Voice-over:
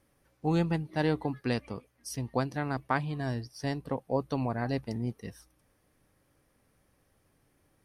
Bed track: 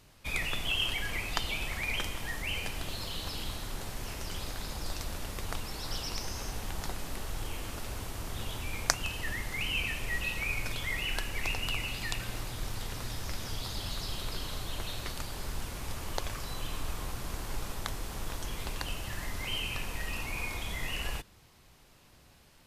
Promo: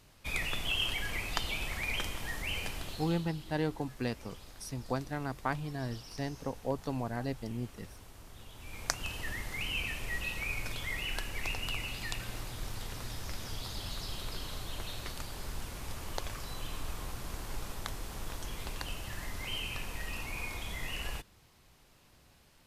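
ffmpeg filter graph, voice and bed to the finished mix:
ffmpeg -i stem1.wav -i stem2.wav -filter_complex "[0:a]adelay=2550,volume=-4.5dB[link_01];[1:a]volume=9dB,afade=type=out:start_time=2.67:duration=0.62:silence=0.251189,afade=type=in:start_time=8.54:duration=0.56:silence=0.298538[link_02];[link_01][link_02]amix=inputs=2:normalize=0" out.wav

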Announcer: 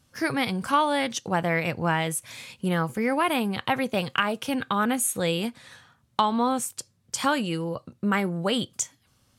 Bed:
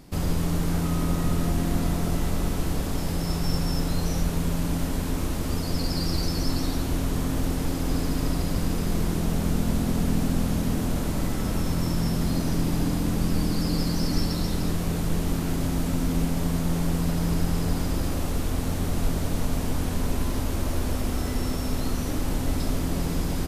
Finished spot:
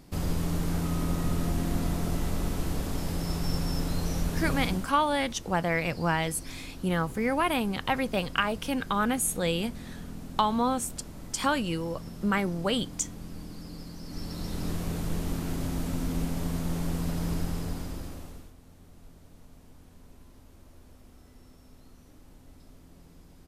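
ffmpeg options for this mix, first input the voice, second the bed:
ffmpeg -i stem1.wav -i stem2.wav -filter_complex "[0:a]adelay=4200,volume=-2.5dB[link_01];[1:a]volume=7.5dB,afade=type=out:start_time=4.64:duration=0.27:silence=0.223872,afade=type=in:start_time=14.04:duration=0.69:silence=0.266073,afade=type=out:start_time=17.32:duration=1.22:silence=0.0841395[link_02];[link_01][link_02]amix=inputs=2:normalize=0" out.wav

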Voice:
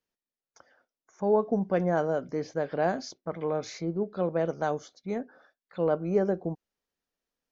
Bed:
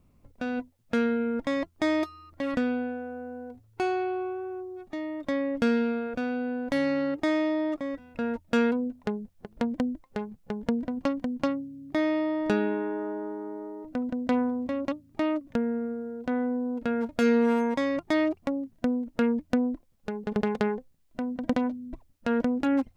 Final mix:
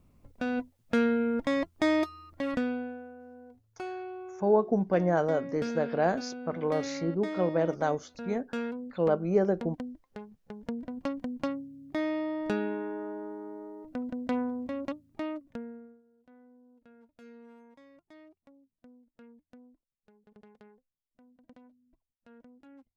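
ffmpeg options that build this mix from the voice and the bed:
ffmpeg -i stem1.wav -i stem2.wav -filter_complex "[0:a]adelay=3200,volume=0.5dB[link_01];[1:a]volume=5.5dB,afade=type=out:start_time=2.2:duration=0.96:silence=0.298538,afade=type=in:start_time=10.52:duration=0.68:silence=0.530884,afade=type=out:start_time=14.89:duration=1.13:silence=0.0595662[link_02];[link_01][link_02]amix=inputs=2:normalize=0" out.wav

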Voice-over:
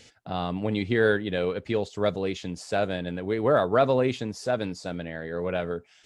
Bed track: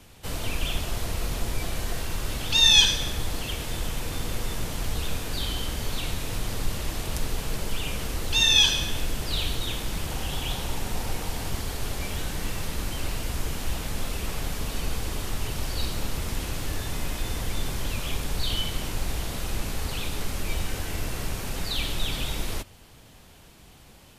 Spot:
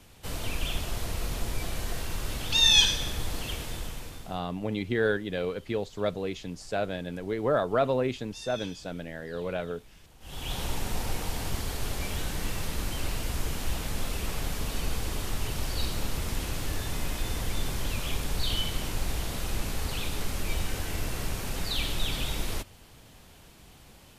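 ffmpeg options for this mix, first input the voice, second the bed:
ffmpeg -i stem1.wav -i stem2.wav -filter_complex "[0:a]adelay=4000,volume=-4dB[link_01];[1:a]volume=20.5dB,afade=type=out:start_time=3.53:duration=0.89:silence=0.0794328,afade=type=in:start_time=10.2:duration=0.42:silence=0.0668344[link_02];[link_01][link_02]amix=inputs=2:normalize=0" out.wav

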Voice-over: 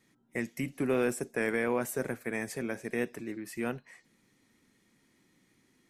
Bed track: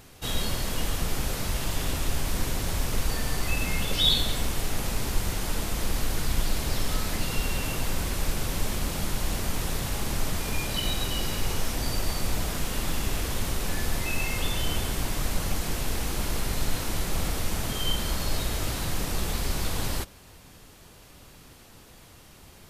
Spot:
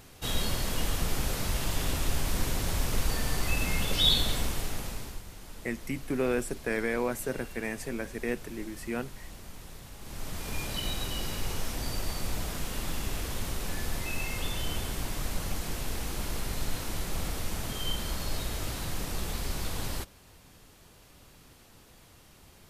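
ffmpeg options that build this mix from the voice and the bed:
ffmpeg -i stem1.wav -i stem2.wav -filter_complex "[0:a]adelay=5300,volume=0dB[link_01];[1:a]volume=10.5dB,afade=type=out:start_time=4.34:duration=0.89:silence=0.16788,afade=type=in:start_time=9.99:duration=0.61:silence=0.251189[link_02];[link_01][link_02]amix=inputs=2:normalize=0" out.wav

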